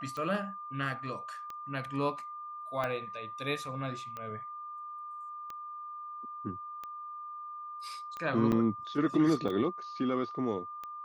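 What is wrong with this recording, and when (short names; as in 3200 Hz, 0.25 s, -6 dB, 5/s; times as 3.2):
tick 45 rpm -27 dBFS
tone 1200 Hz -40 dBFS
2.84 pop -22 dBFS
8.52–8.53 gap 5.2 ms
9.48–9.49 gap 6.1 ms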